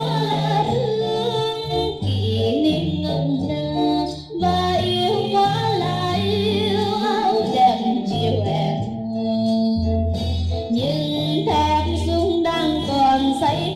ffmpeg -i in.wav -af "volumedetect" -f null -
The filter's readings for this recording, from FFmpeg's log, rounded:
mean_volume: -19.7 dB
max_volume: -5.1 dB